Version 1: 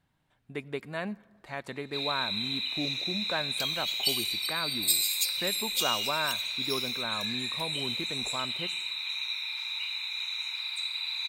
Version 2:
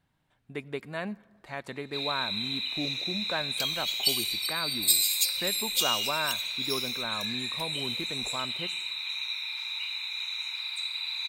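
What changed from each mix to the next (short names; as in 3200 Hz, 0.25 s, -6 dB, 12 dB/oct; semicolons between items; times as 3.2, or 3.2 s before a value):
second sound +3.0 dB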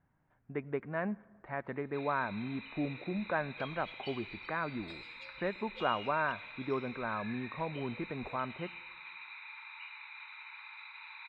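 master: add LPF 1900 Hz 24 dB/oct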